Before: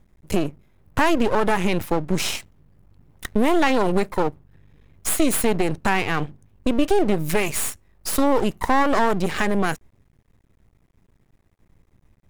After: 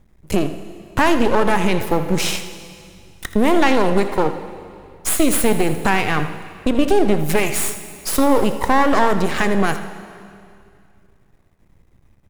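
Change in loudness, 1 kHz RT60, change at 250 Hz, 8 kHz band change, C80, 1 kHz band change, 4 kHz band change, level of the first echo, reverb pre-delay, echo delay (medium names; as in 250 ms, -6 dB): +3.5 dB, 2.4 s, +3.5 dB, +3.5 dB, 9.5 dB, +3.5 dB, +3.5 dB, -13.0 dB, 6 ms, 81 ms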